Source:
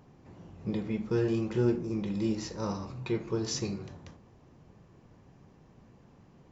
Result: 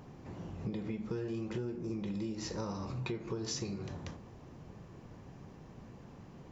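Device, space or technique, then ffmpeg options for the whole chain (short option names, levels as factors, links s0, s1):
serial compression, leveller first: -af "acompressor=threshold=0.0251:ratio=2,acompressor=threshold=0.00891:ratio=5,volume=1.88"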